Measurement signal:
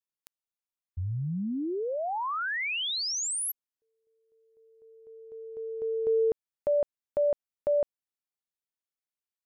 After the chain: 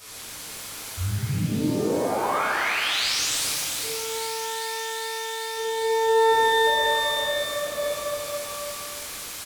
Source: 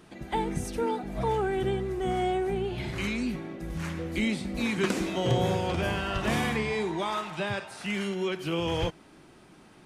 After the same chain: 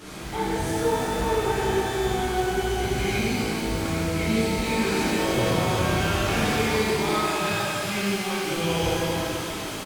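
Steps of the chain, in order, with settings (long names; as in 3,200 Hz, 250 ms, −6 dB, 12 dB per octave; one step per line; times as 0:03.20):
linear delta modulator 64 kbit/s, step −36.5 dBFS
slap from a distant wall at 58 metres, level −9 dB
soft clipping −26 dBFS
on a send: delay with a high-pass on its return 399 ms, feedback 85%, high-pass 3,000 Hz, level −8.5 dB
on the sum: reverb with rising layers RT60 2.3 s, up +12 semitones, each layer −8 dB, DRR −11.5 dB
level −5 dB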